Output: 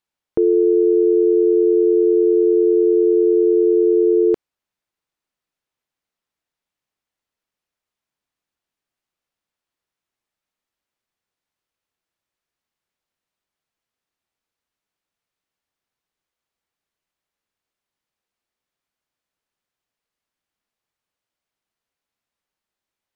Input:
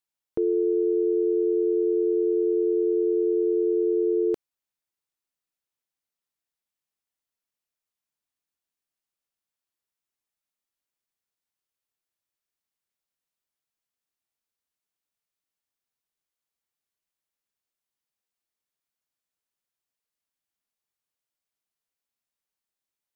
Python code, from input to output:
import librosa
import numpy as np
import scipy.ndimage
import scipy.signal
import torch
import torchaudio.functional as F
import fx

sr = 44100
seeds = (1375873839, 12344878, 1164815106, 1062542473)

y = fx.lowpass(x, sr, hz=3000.0, slope=6)
y = y * librosa.db_to_amplitude(8.5)